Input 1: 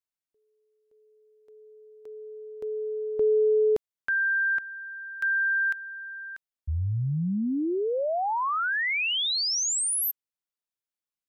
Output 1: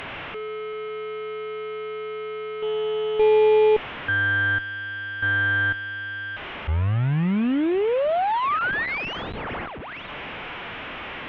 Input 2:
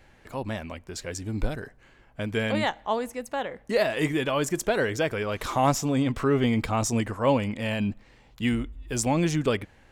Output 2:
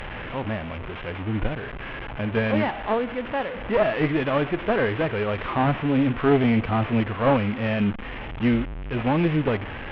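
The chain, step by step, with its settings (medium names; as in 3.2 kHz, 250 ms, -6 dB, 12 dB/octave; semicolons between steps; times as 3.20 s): one-bit delta coder 16 kbps, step -30.5 dBFS; Chebyshev shaper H 2 -7 dB, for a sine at -11.5 dBFS; harmonic-percussive split harmonic +5 dB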